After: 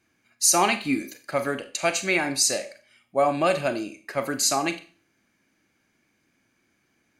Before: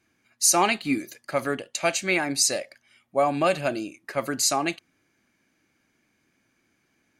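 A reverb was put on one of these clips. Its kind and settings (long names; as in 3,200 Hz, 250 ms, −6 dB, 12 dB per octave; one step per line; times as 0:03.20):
four-comb reverb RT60 0.38 s, combs from 30 ms, DRR 9.5 dB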